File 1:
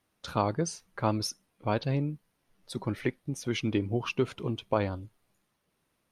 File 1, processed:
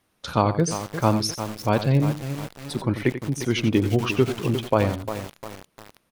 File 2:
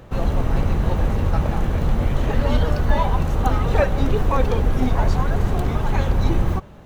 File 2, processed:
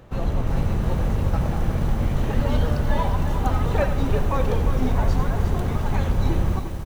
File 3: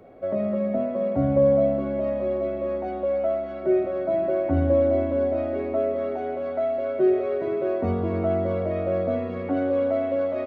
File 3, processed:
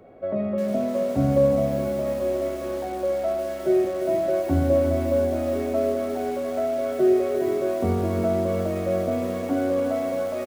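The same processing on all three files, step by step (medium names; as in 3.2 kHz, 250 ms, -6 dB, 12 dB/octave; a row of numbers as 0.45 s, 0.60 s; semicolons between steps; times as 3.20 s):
dynamic bell 140 Hz, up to +3 dB, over -32 dBFS, Q 0.83; delay 89 ms -11.5 dB; bit-crushed delay 352 ms, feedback 55%, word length 6-bit, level -9 dB; normalise loudness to -24 LUFS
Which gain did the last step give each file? +6.5 dB, -4.5 dB, -0.5 dB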